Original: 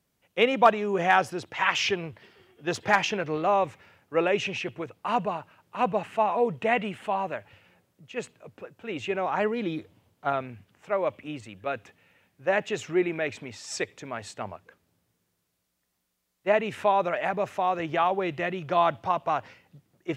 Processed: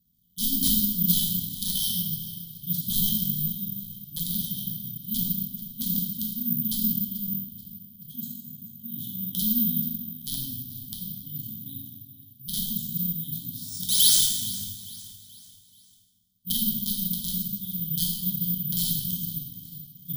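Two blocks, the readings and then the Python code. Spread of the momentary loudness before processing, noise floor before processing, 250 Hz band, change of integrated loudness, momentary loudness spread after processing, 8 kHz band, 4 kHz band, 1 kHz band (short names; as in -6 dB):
14 LU, -77 dBFS, +1.5 dB, +2.0 dB, 17 LU, +15.5 dB, +7.0 dB, under -40 dB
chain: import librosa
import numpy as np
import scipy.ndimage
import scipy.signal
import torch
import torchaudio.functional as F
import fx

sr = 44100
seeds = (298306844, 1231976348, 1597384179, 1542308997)

p1 = fx.low_shelf(x, sr, hz=71.0, db=6.5)
p2 = fx.level_steps(p1, sr, step_db=15)
p3 = p1 + F.gain(torch.from_numpy(p2), 1.0).numpy()
p4 = fx.spec_paint(p3, sr, seeds[0], shape='rise', start_s=13.88, length_s=0.33, low_hz=480.0, high_hz=3700.0, level_db=-11.0)
p5 = (np.mod(10.0 ** (10.5 / 20.0) * p4 + 1.0, 2.0) - 1.0) / 10.0 ** (10.5 / 20.0)
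p6 = fx.brickwall_bandstop(p5, sr, low_hz=270.0, high_hz=3000.0)
p7 = fx.air_absorb(p6, sr, metres=94.0)
p8 = fx.echo_feedback(p7, sr, ms=433, feedback_pct=43, wet_db=-16.5)
p9 = fx.rev_plate(p8, sr, seeds[1], rt60_s=1.6, hf_ratio=0.65, predelay_ms=0, drr_db=-4.5)
p10 = (np.kron(p9[::3], np.eye(3)[0]) * 3)[:len(p9)]
y = F.gain(torch.from_numpy(p10), -6.0).numpy()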